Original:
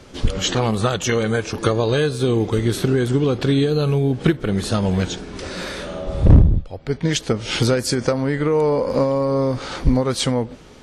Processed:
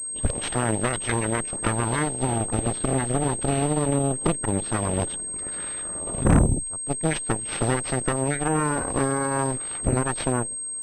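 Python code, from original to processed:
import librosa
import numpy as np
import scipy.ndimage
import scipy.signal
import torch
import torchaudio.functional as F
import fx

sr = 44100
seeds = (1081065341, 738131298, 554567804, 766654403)

y = fx.spec_quant(x, sr, step_db=30)
y = fx.cheby_harmonics(y, sr, harmonics=(7, 8), levels_db=(-25, -11), full_scale_db=-1.5)
y = fx.pwm(y, sr, carrier_hz=8400.0)
y = y * 10.0 ** (-8.0 / 20.0)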